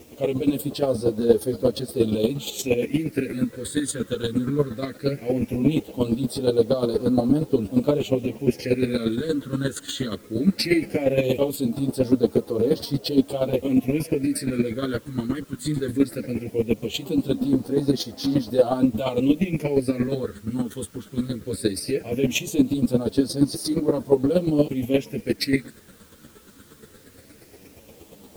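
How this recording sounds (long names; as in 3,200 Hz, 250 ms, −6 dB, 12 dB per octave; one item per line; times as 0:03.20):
phaser sweep stages 8, 0.18 Hz, lowest notch 710–2,400 Hz
chopped level 8.5 Hz, depth 65%, duty 15%
a quantiser's noise floor 10 bits, dither triangular
a shimmering, thickened sound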